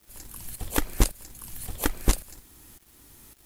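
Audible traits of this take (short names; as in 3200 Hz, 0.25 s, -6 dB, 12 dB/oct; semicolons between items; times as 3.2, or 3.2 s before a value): tremolo saw up 1.8 Hz, depth 75%; a quantiser's noise floor 10-bit, dither none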